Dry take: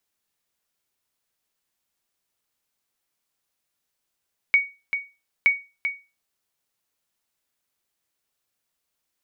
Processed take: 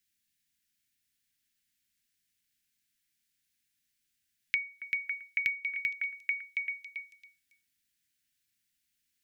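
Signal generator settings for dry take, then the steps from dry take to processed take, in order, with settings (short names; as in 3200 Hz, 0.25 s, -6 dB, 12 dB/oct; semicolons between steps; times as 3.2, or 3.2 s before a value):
sonar ping 2240 Hz, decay 0.28 s, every 0.92 s, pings 2, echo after 0.39 s, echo -8.5 dB -9.5 dBFS
inverse Chebyshev band-stop 440–1100 Hz, stop band 40 dB; on a send: delay with a stepping band-pass 0.277 s, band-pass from 730 Hz, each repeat 0.7 oct, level -0.5 dB; on the sum: compressor 6:1, threshold -28 dBFS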